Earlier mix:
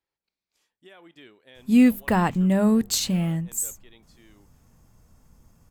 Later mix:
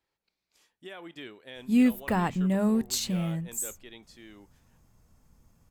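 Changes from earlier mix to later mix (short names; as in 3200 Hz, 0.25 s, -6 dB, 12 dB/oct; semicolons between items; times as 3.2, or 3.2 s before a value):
speech +6.0 dB; background -5.5 dB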